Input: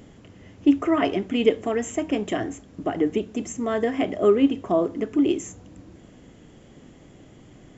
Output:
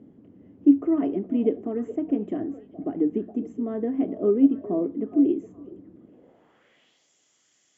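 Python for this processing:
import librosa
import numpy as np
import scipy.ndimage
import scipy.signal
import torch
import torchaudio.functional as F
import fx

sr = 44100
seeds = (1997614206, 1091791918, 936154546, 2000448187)

y = fx.filter_sweep_bandpass(x, sr, from_hz=270.0, to_hz=6200.0, start_s=6.03, end_s=7.09, q=1.8)
y = fx.echo_stepped(y, sr, ms=416, hz=600.0, octaves=1.4, feedback_pct=70, wet_db=-11)
y = F.gain(torch.from_numpy(y), 1.5).numpy()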